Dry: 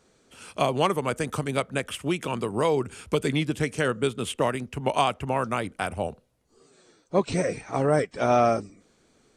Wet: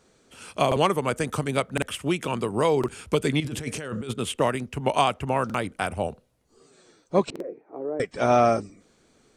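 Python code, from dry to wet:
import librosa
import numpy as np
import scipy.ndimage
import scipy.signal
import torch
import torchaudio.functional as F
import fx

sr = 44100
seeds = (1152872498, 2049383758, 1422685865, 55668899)

y = fx.over_compress(x, sr, threshold_db=-33.0, ratio=-1.0, at=(3.4, 4.14))
y = fx.ladder_bandpass(y, sr, hz=410.0, resonance_pct=55, at=(7.3, 8.0))
y = fx.buffer_glitch(y, sr, at_s=(0.67, 1.73, 2.79, 5.45, 7.31), block=2048, repeats=1)
y = F.gain(torch.from_numpy(y), 1.5).numpy()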